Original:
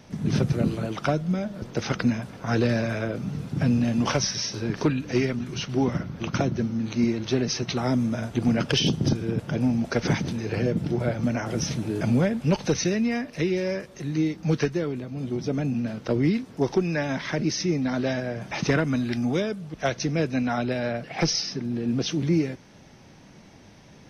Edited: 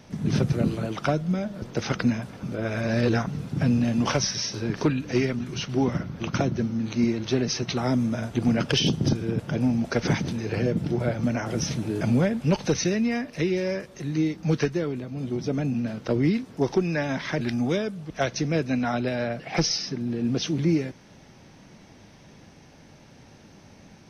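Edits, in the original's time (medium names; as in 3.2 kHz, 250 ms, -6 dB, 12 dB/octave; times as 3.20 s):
2.43–3.27 s: reverse
17.41–19.05 s: delete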